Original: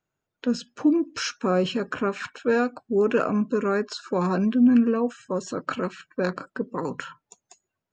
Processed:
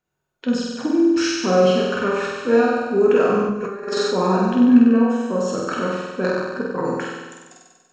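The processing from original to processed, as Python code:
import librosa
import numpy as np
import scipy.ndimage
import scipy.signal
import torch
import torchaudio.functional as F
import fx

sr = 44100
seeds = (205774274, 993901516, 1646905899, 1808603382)

y = fx.room_flutter(x, sr, wall_m=8.2, rt60_s=1.3)
y = fx.over_compress(y, sr, threshold_db=-25.0, ratio=-0.5, at=(3.49, 4.11))
y = fx.rev_double_slope(y, sr, seeds[0], early_s=0.58, late_s=1.7, knee_db=-18, drr_db=3.0)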